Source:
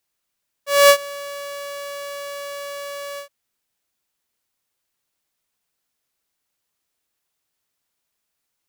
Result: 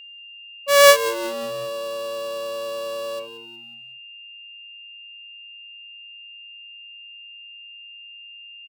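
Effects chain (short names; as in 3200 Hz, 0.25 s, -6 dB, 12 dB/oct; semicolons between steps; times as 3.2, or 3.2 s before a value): Wiener smoothing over 25 samples; spectral noise reduction 14 dB; in parallel at +0.5 dB: compressor, threshold -22 dBFS, peak gain reduction 13 dB; on the sum: vibrato 9.9 Hz 9.2 cents; whine 2800 Hz -39 dBFS; frequency-shifting echo 0.183 s, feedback 45%, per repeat -110 Hz, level -14 dB; on a send at -18 dB: reverb, pre-delay 3 ms; on the sum: gain -1 dB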